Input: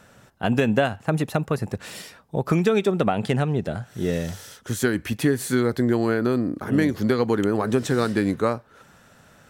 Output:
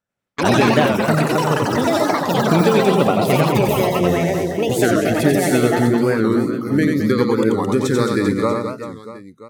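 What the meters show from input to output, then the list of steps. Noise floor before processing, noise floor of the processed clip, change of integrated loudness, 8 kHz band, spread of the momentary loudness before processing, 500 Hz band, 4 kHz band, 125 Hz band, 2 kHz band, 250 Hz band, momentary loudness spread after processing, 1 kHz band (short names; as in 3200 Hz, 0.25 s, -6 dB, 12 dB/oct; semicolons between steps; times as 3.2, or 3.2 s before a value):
-54 dBFS, -43 dBFS, +6.5 dB, +7.0 dB, 11 LU, +7.0 dB, +9.0 dB, +5.0 dB, +7.0 dB, +6.0 dB, 5 LU, +10.0 dB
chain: spectral noise reduction 19 dB; gate -40 dBFS, range -18 dB; echoes that change speed 96 ms, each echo +7 st, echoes 3; on a send: reverse bouncing-ball echo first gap 90 ms, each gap 1.4×, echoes 5; on the sum: record warp 45 rpm, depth 160 cents; gain +3 dB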